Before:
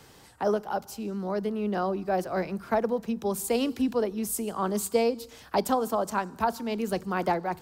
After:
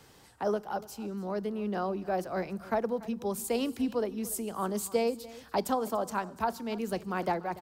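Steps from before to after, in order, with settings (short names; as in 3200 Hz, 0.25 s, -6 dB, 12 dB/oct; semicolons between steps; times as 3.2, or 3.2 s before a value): echo 0.289 s -18.5 dB; gain -4 dB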